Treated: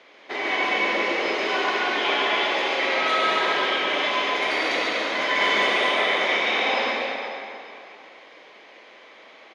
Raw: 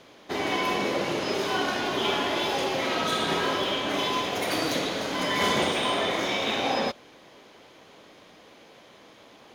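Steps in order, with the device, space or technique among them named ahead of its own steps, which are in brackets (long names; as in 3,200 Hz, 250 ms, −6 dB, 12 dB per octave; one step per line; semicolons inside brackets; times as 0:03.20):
station announcement (band-pass filter 410–4,400 Hz; parametric band 2,100 Hz +8 dB 0.49 octaves; loudspeakers that aren't time-aligned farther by 48 metres −5 dB, 84 metres −9 dB; convolution reverb RT60 2.8 s, pre-delay 70 ms, DRR 2 dB)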